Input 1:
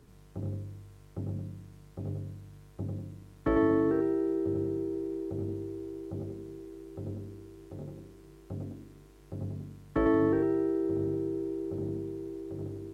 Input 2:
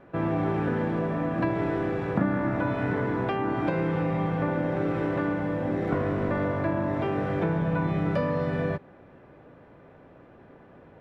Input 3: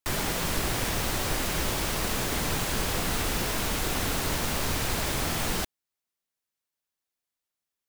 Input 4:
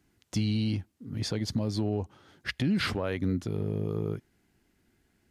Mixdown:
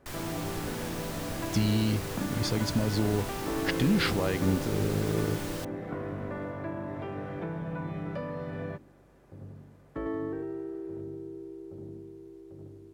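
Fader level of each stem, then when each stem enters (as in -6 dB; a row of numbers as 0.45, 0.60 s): -8.5, -9.5, -11.0, +1.5 dB; 0.00, 0.00, 0.00, 1.20 s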